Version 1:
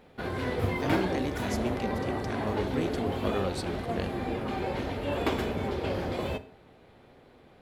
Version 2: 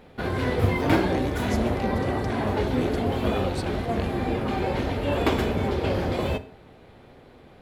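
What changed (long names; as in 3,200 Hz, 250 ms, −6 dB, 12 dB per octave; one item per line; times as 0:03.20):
background +5.0 dB
master: add low-shelf EQ 140 Hz +4 dB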